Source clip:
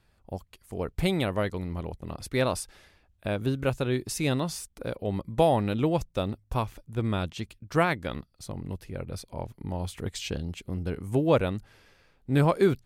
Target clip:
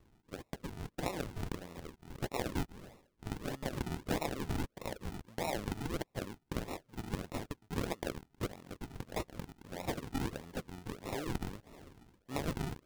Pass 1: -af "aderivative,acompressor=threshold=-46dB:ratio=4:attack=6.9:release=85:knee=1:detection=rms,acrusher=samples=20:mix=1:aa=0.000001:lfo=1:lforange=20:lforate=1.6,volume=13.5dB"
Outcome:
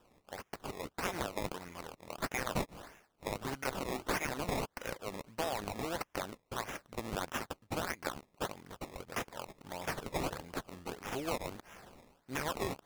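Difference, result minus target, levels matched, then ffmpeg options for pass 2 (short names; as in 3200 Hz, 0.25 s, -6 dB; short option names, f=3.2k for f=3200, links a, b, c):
decimation with a swept rate: distortion -13 dB
-af "aderivative,acompressor=threshold=-46dB:ratio=4:attack=6.9:release=85:knee=1:detection=rms,acrusher=samples=55:mix=1:aa=0.000001:lfo=1:lforange=55:lforate=1.6,volume=13.5dB"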